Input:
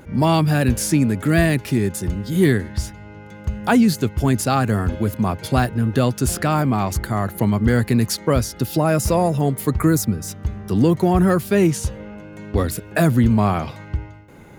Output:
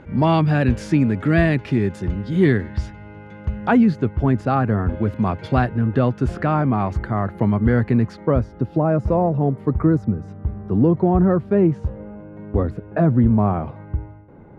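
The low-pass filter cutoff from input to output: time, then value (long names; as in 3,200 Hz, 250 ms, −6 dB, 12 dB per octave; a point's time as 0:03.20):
0:03.41 2,800 Hz
0:03.99 1,600 Hz
0:04.91 1,600 Hz
0:05.25 3,000 Hz
0:06.03 1,800 Hz
0:07.87 1,800 Hz
0:08.52 1,000 Hz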